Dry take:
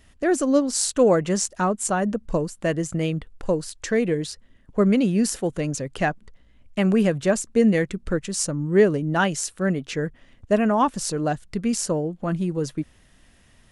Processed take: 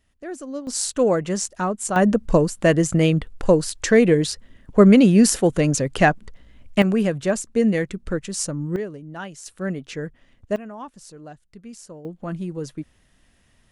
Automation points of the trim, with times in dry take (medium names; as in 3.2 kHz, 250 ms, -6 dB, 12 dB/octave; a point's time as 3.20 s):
-12.5 dB
from 0.67 s -1.5 dB
from 1.96 s +7 dB
from 6.82 s -1 dB
from 8.76 s -13 dB
from 9.46 s -4 dB
from 10.56 s -16.5 dB
from 12.05 s -4.5 dB